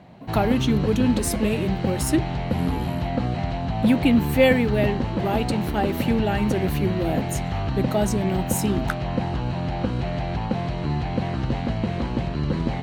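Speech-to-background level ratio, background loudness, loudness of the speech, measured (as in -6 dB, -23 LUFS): 2.0 dB, -26.5 LUFS, -24.5 LUFS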